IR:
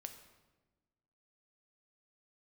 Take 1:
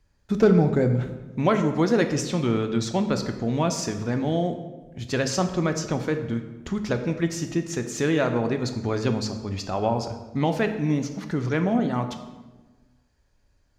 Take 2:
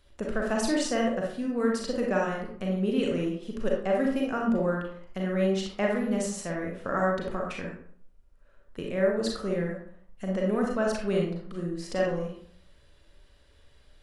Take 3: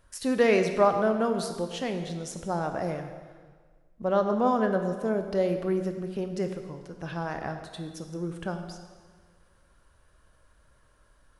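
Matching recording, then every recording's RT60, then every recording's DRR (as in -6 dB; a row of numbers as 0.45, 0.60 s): 1; 1.2, 0.60, 1.6 s; 6.5, -1.5, 6.5 dB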